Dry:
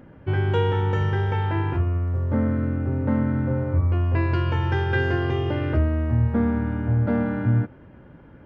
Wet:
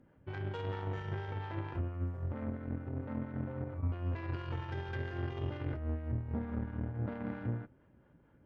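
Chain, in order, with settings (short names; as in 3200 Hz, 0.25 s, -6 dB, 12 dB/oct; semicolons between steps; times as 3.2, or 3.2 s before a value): 4.88–6.93 low shelf 110 Hz +9 dB; limiter -18 dBFS, peak gain reduction 11 dB; harmonic tremolo 4.4 Hz, depth 50%, crossover 430 Hz; added harmonics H 3 -14 dB, 8 -34 dB, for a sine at -17.5 dBFS; gain -7 dB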